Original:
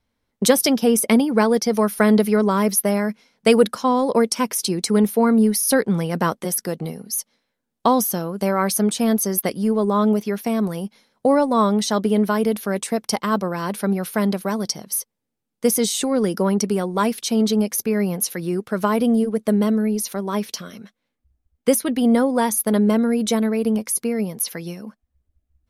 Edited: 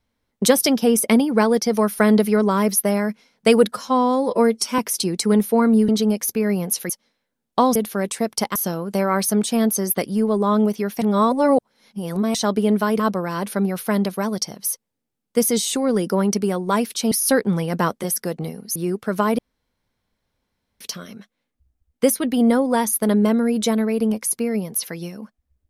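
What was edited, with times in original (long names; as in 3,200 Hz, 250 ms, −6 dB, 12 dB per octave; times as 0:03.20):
0:03.72–0:04.43: time-stretch 1.5×
0:05.53–0:07.17: swap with 0:17.39–0:18.40
0:10.49–0:11.82: reverse
0:12.47–0:13.27: move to 0:08.03
0:19.03–0:20.45: fill with room tone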